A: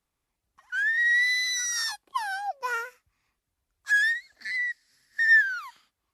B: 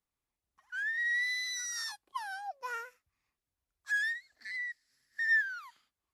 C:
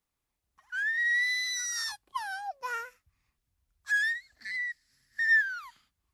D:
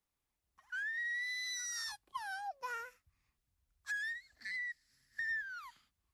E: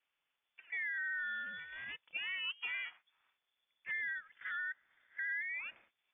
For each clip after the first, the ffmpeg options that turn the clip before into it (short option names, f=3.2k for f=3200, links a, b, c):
-af "bandreject=f=50:t=h:w=6,bandreject=f=100:t=h:w=6,bandreject=f=150:t=h:w=6,bandreject=f=200:t=h:w=6,volume=-9dB"
-af "asubboost=boost=3.5:cutoff=210,volume=4.5dB"
-filter_complex "[0:a]acrossover=split=290[a][b];[b]acompressor=threshold=-35dB:ratio=4[c];[a][c]amix=inputs=2:normalize=0,volume=-3.5dB"
-filter_complex "[0:a]asplit=2[a][b];[b]highpass=f=720:p=1,volume=17dB,asoftclip=type=tanh:threshold=-30dB[c];[a][c]amix=inputs=2:normalize=0,lowpass=f=2.4k:p=1,volume=-6dB,aeval=exprs='val(0)*sin(2*PI*170*n/s)':c=same,lowpass=f=3.1k:t=q:w=0.5098,lowpass=f=3.1k:t=q:w=0.6013,lowpass=f=3.1k:t=q:w=0.9,lowpass=f=3.1k:t=q:w=2.563,afreqshift=-3600,volume=1dB"